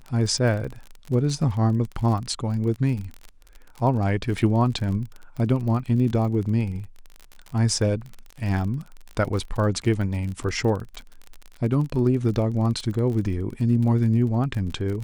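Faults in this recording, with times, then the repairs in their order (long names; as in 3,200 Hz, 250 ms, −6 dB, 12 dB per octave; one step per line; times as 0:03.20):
surface crackle 34 per second −30 dBFS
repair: click removal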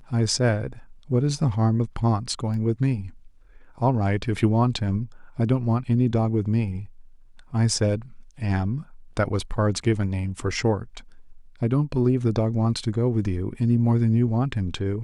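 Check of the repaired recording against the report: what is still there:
none of them is left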